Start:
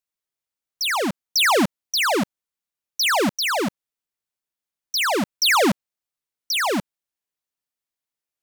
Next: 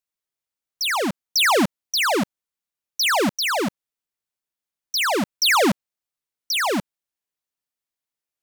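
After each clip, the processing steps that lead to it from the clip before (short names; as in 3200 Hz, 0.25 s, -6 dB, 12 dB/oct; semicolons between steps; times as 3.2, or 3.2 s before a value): nothing audible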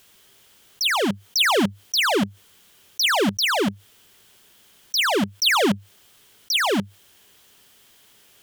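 thirty-one-band EQ 100 Hz +9 dB, 200 Hz +6 dB, 400 Hz +7 dB, 1600 Hz +3 dB, 3150 Hz +9 dB; fast leveller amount 50%; gain -5.5 dB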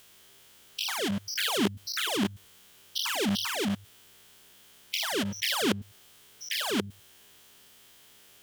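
stepped spectrum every 0.1 s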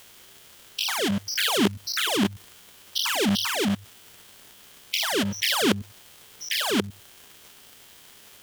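crackle 260/s -42 dBFS; gain +5 dB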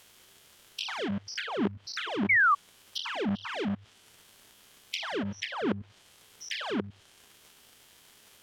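treble ducked by the level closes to 1500 Hz, closed at -20 dBFS; painted sound fall, 2.29–2.55, 1100–2300 Hz -15 dBFS; gain -6.5 dB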